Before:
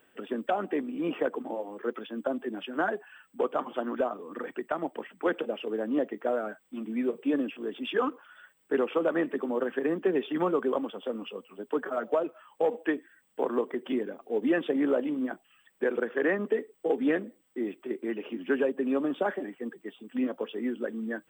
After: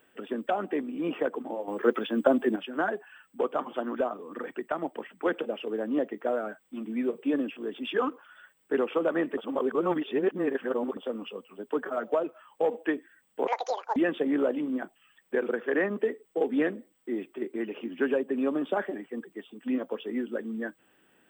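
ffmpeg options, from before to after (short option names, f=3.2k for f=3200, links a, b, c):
-filter_complex "[0:a]asplit=7[a][b][c][d][e][f][g];[a]atrim=end=1.682[h];[b]atrim=start=1.678:end=2.562,asetpts=PTS-STARTPTS,volume=8.5dB[i];[c]atrim=start=2.558:end=9.372[j];[d]atrim=start=9.368:end=10.972,asetpts=PTS-STARTPTS,areverse[k];[e]atrim=start=10.968:end=13.474[l];[f]atrim=start=13.47:end=14.45,asetpts=PTS-STARTPTS,asetrate=87759,aresample=44100[m];[g]atrim=start=14.446[n];[h][i]acrossfade=d=0.004:c1=hsin:c2=hsin[o];[o][j]acrossfade=d=0.004:c1=hsin:c2=hsin[p];[p][k]acrossfade=d=0.004:c1=hsin:c2=hsin[q];[q][l]acrossfade=d=0.004:c1=hsin:c2=hsin[r];[r][m]acrossfade=d=0.004:c1=hsin:c2=hsin[s];[s][n]acrossfade=d=0.004:c1=hsin:c2=hsin"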